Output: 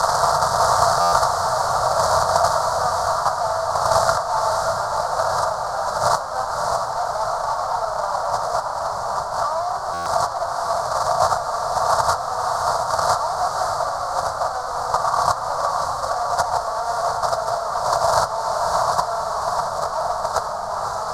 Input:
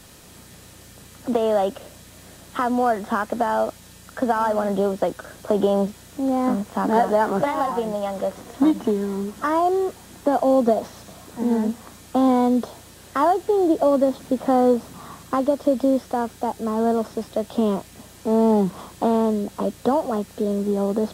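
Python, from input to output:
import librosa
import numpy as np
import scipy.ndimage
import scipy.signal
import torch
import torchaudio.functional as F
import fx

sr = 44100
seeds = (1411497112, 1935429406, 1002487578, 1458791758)

p1 = fx.bin_compress(x, sr, power=0.6)
p2 = fx.room_shoebox(p1, sr, seeds[0], volume_m3=3400.0, walls='furnished', distance_m=1.7)
p3 = fx.fuzz(p2, sr, gain_db=34.0, gate_db=-33.0)
p4 = fx.over_compress(p3, sr, threshold_db=-19.0, ratio=-0.5)
p5 = fx.curve_eq(p4, sr, hz=(140.0, 220.0, 330.0, 640.0, 1300.0, 2600.0, 4400.0), db=(0, -27, -27, 7, 10, -30, 5))
p6 = fx.transient(p5, sr, attack_db=7, sustain_db=-2)
p7 = scipy.signal.sosfilt(scipy.signal.butter(2, 7000.0, 'lowpass', fs=sr, output='sos'), p6)
p8 = p7 + fx.echo_diffused(p7, sr, ms=588, feedback_pct=52, wet_db=-4, dry=0)
p9 = fx.buffer_glitch(p8, sr, at_s=(1.0, 9.93), block=512, repeats=10)
y = p9 * 10.0 ** (-6.5 / 20.0)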